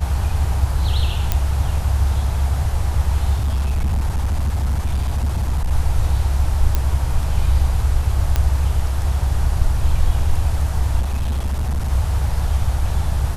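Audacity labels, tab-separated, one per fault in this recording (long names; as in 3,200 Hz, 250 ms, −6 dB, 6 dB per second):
1.320000	1.320000	click −3 dBFS
3.370000	5.710000	clipping −15.5 dBFS
6.750000	6.750000	click −5 dBFS
8.360000	8.360000	click −5 dBFS
11.000000	11.920000	clipping −17 dBFS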